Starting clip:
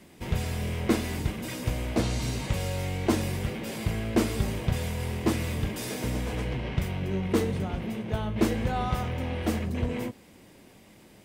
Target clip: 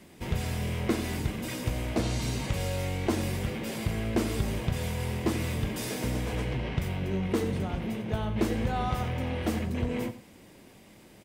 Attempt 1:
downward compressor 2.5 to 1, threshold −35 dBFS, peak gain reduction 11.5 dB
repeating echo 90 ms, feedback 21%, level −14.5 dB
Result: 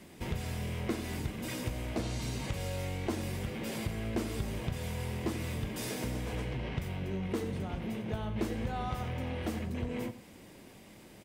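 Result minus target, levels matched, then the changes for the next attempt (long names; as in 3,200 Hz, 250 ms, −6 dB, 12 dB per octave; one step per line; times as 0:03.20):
downward compressor: peak gain reduction +6.5 dB
change: downward compressor 2.5 to 1, threshold −24 dBFS, peak gain reduction 5 dB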